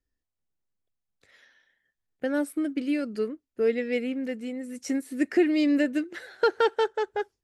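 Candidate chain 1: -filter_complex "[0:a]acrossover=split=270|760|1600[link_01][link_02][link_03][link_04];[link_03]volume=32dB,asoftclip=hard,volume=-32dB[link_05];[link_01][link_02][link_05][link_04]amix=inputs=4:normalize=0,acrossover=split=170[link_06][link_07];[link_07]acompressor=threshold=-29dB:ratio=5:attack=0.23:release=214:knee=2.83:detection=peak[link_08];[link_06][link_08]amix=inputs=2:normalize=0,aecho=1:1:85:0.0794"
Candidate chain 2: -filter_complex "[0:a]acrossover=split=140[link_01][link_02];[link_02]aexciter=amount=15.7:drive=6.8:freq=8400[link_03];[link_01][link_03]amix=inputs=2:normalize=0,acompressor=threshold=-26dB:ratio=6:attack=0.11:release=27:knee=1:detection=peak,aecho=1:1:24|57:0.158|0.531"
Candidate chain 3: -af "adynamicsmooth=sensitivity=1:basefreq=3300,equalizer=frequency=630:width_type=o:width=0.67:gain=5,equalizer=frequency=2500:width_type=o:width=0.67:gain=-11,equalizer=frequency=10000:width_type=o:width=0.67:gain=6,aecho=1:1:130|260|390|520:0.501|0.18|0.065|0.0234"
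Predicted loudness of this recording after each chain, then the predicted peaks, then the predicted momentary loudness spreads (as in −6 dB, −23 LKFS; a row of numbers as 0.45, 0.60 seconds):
−34.5, −31.5, −25.5 LKFS; −23.5, −19.5, −9.5 dBFS; 7, 5, 10 LU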